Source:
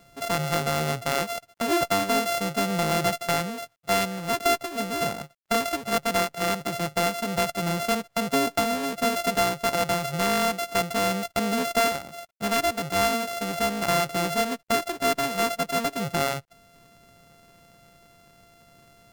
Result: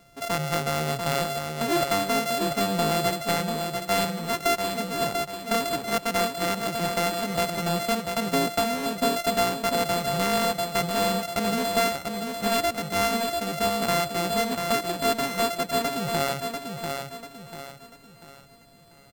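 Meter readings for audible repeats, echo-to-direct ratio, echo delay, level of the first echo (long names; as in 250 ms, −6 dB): 4, −5.0 dB, 692 ms, −5.5 dB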